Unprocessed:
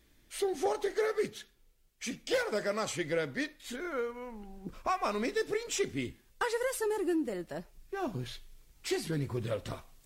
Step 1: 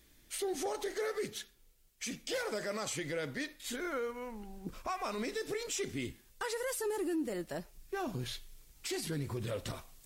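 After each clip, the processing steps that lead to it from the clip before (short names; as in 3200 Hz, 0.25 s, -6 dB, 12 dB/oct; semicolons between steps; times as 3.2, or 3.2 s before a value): high shelf 4200 Hz +7 dB; limiter -28.5 dBFS, peak gain reduction 8.5 dB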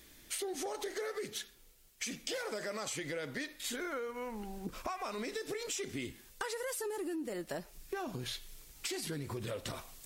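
low shelf 170 Hz -6.5 dB; compressor, threshold -44 dBFS, peak gain reduction 11 dB; gain +7.5 dB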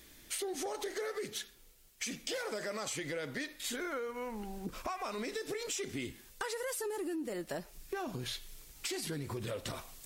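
soft clip -25 dBFS, distortion -30 dB; gain +1 dB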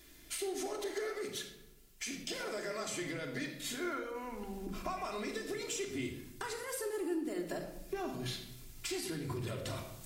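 reverb RT60 0.90 s, pre-delay 3 ms, DRR 1 dB; gain -3.5 dB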